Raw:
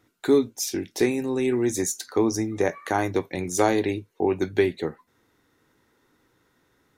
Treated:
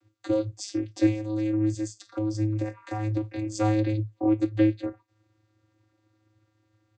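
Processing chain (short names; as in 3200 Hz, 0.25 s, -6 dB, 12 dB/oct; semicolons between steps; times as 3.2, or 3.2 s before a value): high shelf 3000 Hz +11 dB; comb 2.4 ms, depth 48%; 1.26–3.2 compressor, threshold -21 dBFS, peak gain reduction 7.5 dB; vocoder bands 16, square 107 Hz; gain -3 dB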